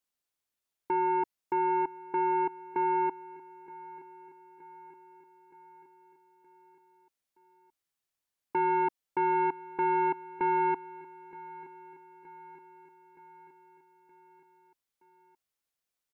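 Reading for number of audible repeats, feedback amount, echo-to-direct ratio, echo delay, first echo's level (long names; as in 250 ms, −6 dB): 4, 59%, −17.0 dB, 921 ms, −19.0 dB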